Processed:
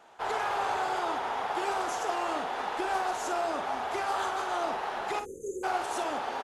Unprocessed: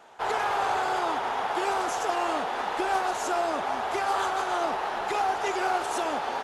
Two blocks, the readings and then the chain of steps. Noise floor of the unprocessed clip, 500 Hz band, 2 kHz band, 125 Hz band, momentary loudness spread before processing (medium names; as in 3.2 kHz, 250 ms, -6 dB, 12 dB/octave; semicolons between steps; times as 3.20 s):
-32 dBFS, -3.5 dB, -4.0 dB, no reading, 3 LU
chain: spectral selection erased 5.20–5.64 s, 550–6100 Hz; early reflections 45 ms -11 dB, 57 ms -14.5 dB; trim -4 dB